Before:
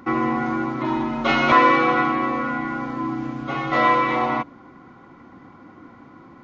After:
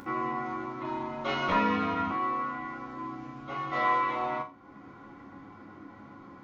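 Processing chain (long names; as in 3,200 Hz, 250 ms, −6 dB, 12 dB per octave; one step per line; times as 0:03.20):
0:01.48–0:02.11: frequency shifter −54 Hz
upward compression, threshold −28 dBFS
resonators tuned to a chord C#2 sus4, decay 0.29 s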